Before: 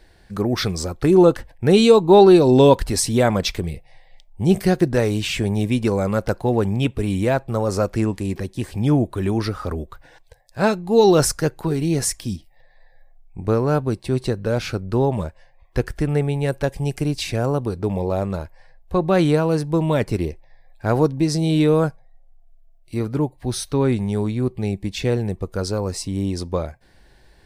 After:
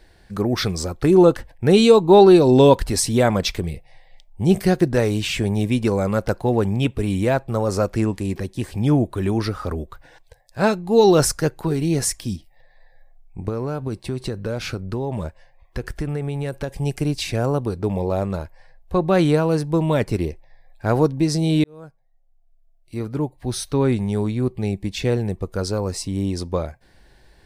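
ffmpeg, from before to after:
-filter_complex "[0:a]asettb=1/sr,asplit=3[s0][s1][s2];[s0]atrim=end=13.484[s3];[s1]atrim=start=13.48:end=16.78,asetpts=PTS-STARTPTS,afade=t=in:d=0.004:c=qsin,afade=t=out:st=3.296:d=0.004:c=qsin,acompressor=threshold=0.1:ratio=12:attack=3.2:release=140:knee=1:detection=peak[s4];[s2]atrim=start=16.776[s5];[s3][s4]acrossfade=d=0.004:c1=hsin:c2=qsin[s6];[s6][s5]acrossfade=d=0.004:c1=qsin:c2=hsin,asplit=2[s7][s8];[s7]atrim=end=21.64,asetpts=PTS-STARTPTS,afade=t=out:st=21.636:d=0.004:c=hsin[s9];[s8]atrim=start=21.64,asetpts=PTS-STARTPTS,afade=t=in:d=2.09[s10];[s9][s10]concat=n=2:v=0:a=1"

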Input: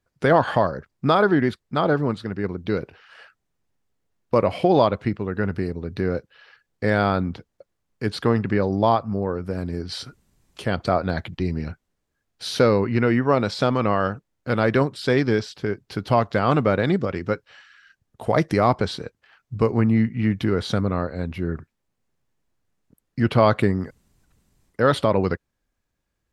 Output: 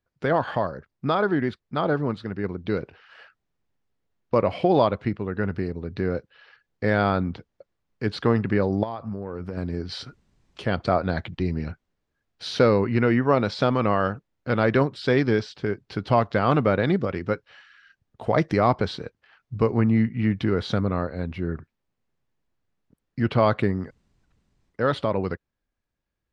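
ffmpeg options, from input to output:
-filter_complex "[0:a]asettb=1/sr,asplit=3[s0][s1][s2];[s0]atrim=end=8.834[s3];[s1]atrim=start=8.83:end=9.57,asetpts=PTS-STARTPTS,afade=t=in:d=0.004:c=qsin,afade=t=out:st=0.736:d=0.004:c=qsin,acompressor=threshold=0.0562:ratio=16:attack=3.2:release=140:knee=1:detection=peak[s4];[s2]atrim=start=9.566[s5];[s3][s4]acrossfade=d=0.004:c1=hsin:c2=qsin[s6];[s6][s5]acrossfade=d=0.004:c1=qsin:c2=hsin,lowpass=5000,dynaudnorm=f=120:g=31:m=3.76,volume=0.531"

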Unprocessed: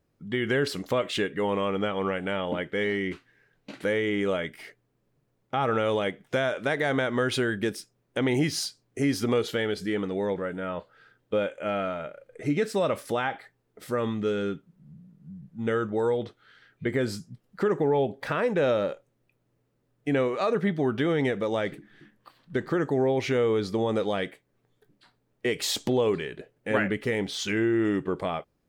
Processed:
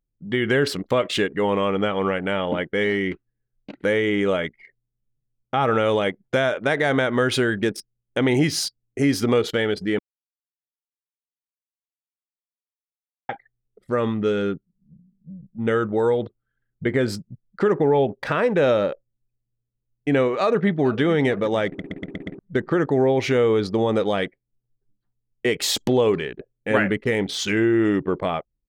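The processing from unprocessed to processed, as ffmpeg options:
-filter_complex "[0:a]asplit=2[s0][s1];[s1]afade=t=in:st=20.39:d=0.01,afade=t=out:st=21.02:d=0.01,aecho=0:1:450|900|1350|1800:0.141254|0.0635642|0.0286039|0.0128717[s2];[s0][s2]amix=inputs=2:normalize=0,asplit=9[s3][s4][s5][s6][s7][s8][s9][s10][s11];[s3]atrim=end=9.99,asetpts=PTS-STARTPTS,afade=t=out:st=9.986:d=0.004:c=hsin[s12];[s4]atrim=start=9.99:end=13.29,asetpts=PTS-STARTPTS,volume=0[s13];[s5]atrim=start=13.29:end=21.792,asetpts=PTS-STARTPTS,afade=t=in:d=0.004:c=hsin[s14];[s6]atrim=start=21.668:end=21.792[s15];[s7]atrim=start=21.668:end=21.792[s16];[s8]atrim=start=21.668:end=21.792[s17];[s9]atrim=start=21.668:end=21.792[s18];[s10]atrim=start=21.668:end=21.792[s19];[s11]atrim=start=22.388[s20];[s12][s13][s14]concat=n=3:v=0:a=1[s21];[s21][s15]acrossfade=d=0.004:c1=hsin:c2=hsin[s22];[s22][s16]acrossfade=d=0.004:c1=hsin:c2=hsin[s23];[s23][s17]acrossfade=d=0.004:c1=hsin:c2=hsin[s24];[s24][s18]acrossfade=d=0.004:c1=hsin:c2=hsin[s25];[s25][s19]acrossfade=d=0.004:c1=hsin:c2=hsin[s26];[s26][s20]acrossfade=d=0.004:c1=hsin:c2=hsin,anlmdn=1,volume=1.88"

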